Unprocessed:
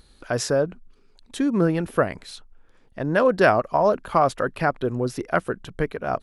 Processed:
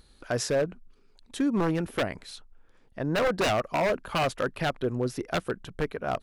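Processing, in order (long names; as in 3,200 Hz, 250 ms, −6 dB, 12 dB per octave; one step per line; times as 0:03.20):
wave folding −15.5 dBFS
level −3.5 dB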